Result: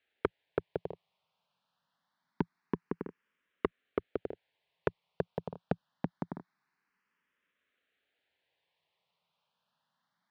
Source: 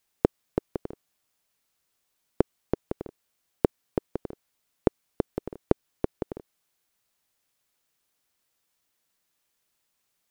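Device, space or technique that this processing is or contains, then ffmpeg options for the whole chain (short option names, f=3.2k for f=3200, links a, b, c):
barber-pole phaser into a guitar amplifier: -filter_complex "[0:a]asplit=2[a][b];[b]afreqshift=0.25[c];[a][c]amix=inputs=2:normalize=1,asoftclip=type=tanh:threshold=-19.5dB,highpass=110,equalizer=f=110:t=q:w=4:g=-6,equalizer=f=170:t=q:w=4:g=5,equalizer=f=330:t=q:w=4:g=-6,equalizer=f=960:t=q:w=4:g=4,equalizer=f=1.7k:t=q:w=4:g=4,lowpass=f=3.7k:w=0.5412,lowpass=f=3.7k:w=1.3066,volume=3dB"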